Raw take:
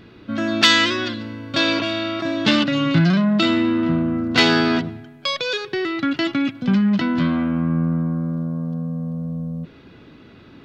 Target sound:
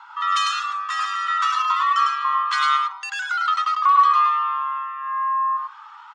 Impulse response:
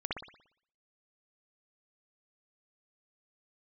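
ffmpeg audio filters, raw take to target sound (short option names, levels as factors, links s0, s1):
-filter_complex "[0:a]lowpass=1400,lowshelf=f=200:g=9.5,asplit=2[s0][s1];[s1]acompressor=threshold=0.0631:ratio=6,volume=0.708[s2];[s0][s2]amix=inputs=2:normalize=0,flanger=delay=2.6:depth=2.2:regen=-7:speed=0.37:shape=sinusoidal,afreqshift=450,aecho=1:1:176:0.708,asetrate=76440,aresample=44100,volume=0.631"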